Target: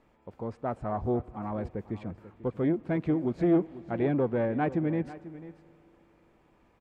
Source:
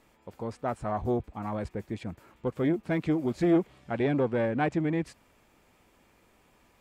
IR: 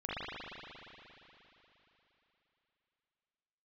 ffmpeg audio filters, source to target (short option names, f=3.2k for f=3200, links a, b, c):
-filter_complex "[0:a]lowpass=f=1.3k:p=1,aecho=1:1:492:0.158,asplit=2[a][b];[1:a]atrim=start_sample=2205,adelay=84[c];[b][c]afir=irnorm=-1:irlink=0,volume=-29dB[d];[a][d]amix=inputs=2:normalize=0"